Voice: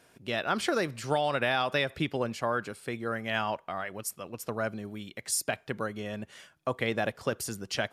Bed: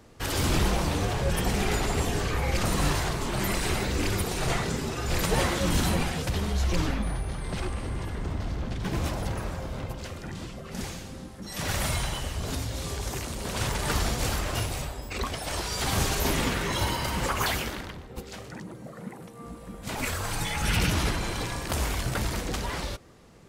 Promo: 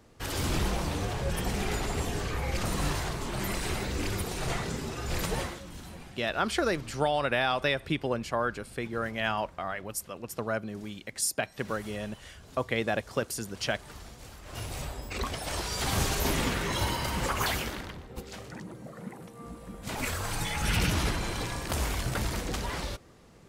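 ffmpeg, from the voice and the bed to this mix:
-filter_complex "[0:a]adelay=5900,volume=0.5dB[a];[1:a]volume=13dB,afade=t=out:st=5.24:d=0.4:silence=0.177828,afade=t=in:st=14.42:d=0.49:silence=0.133352[b];[a][b]amix=inputs=2:normalize=0"

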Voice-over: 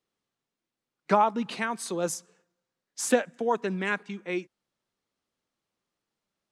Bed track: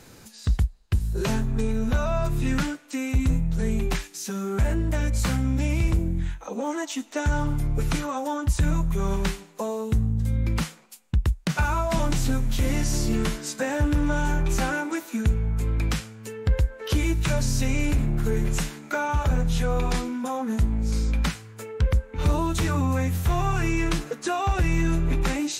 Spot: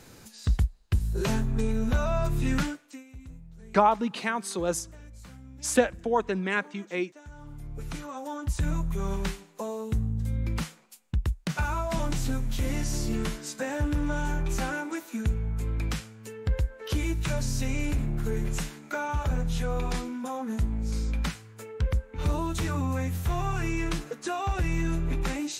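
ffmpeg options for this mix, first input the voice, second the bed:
-filter_complex "[0:a]adelay=2650,volume=1dB[a];[1:a]volume=16dB,afade=t=out:st=2.61:d=0.43:silence=0.0891251,afade=t=in:st=7.36:d=1.36:silence=0.125893[b];[a][b]amix=inputs=2:normalize=0"

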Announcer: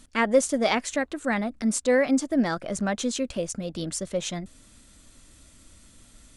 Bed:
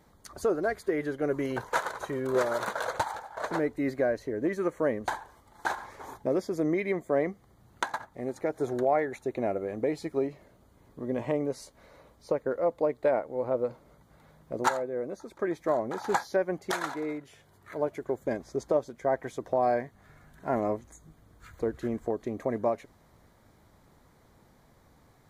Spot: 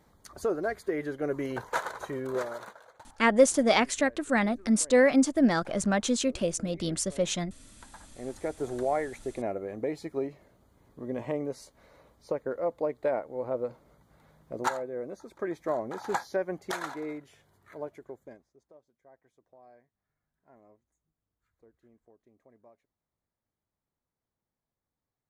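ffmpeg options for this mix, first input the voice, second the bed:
-filter_complex "[0:a]adelay=3050,volume=0.5dB[a];[1:a]volume=18.5dB,afade=t=out:st=2.16:d=0.65:silence=0.0841395,afade=t=in:st=7.9:d=0.41:silence=0.0944061,afade=t=out:st=17.19:d=1.31:silence=0.0421697[b];[a][b]amix=inputs=2:normalize=0"

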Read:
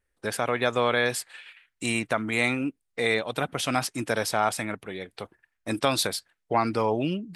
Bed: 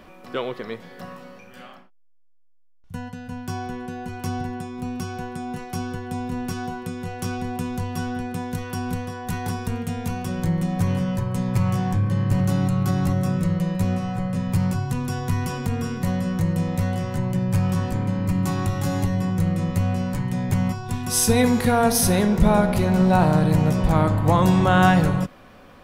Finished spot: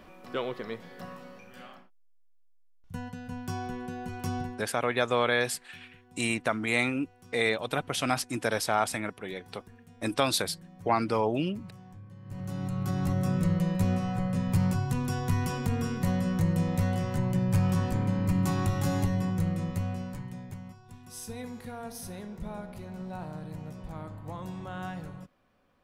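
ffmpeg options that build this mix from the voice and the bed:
-filter_complex "[0:a]adelay=4350,volume=-2dB[a];[1:a]volume=17.5dB,afade=t=out:st=4.4:d=0.29:silence=0.0841395,afade=t=in:st=12.22:d=1.23:silence=0.0749894,afade=t=out:st=18.88:d=1.73:silence=0.125893[b];[a][b]amix=inputs=2:normalize=0"

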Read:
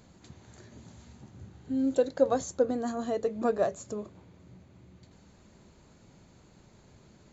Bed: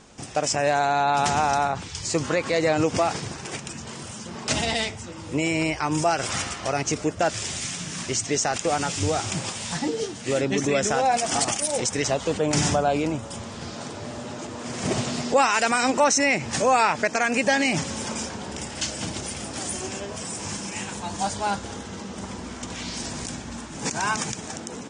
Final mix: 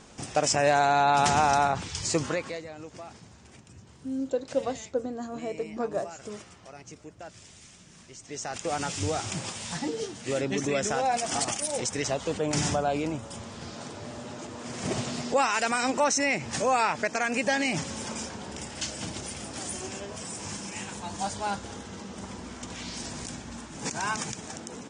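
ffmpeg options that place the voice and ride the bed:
-filter_complex "[0:a]adelay=2350,volume=-3.5dB[a];[1:a]volume=15.5dB,afade=t=out:st=2.05:d=0.59:silence=0.0944061,afade=t=in:st=8.2:d=0.63:silence=0.158489[b];[a][b]amix=inputs=2:normalize=0"

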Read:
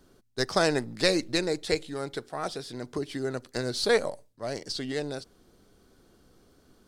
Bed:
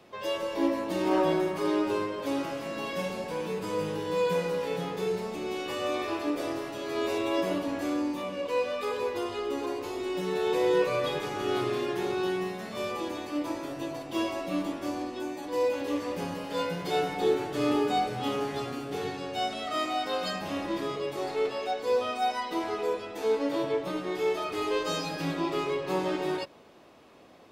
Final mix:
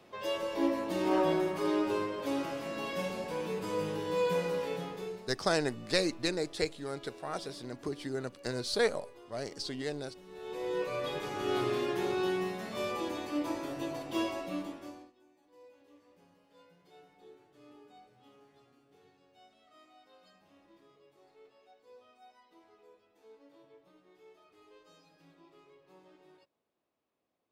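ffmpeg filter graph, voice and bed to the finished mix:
-filter_complex "[0:a]adelay=4900,volume=-5dB[a];[1:a]volume=17dB,afade=t=out:st=4.58:d=0.77:silence=0.112202,afade=t=in:st=10.28:d=1.37:silence=0.1,afade=t=out:st=14.12:d=1.01:silence=0.0375837[b];[a][b]amix=inputs=2:normalize=0"

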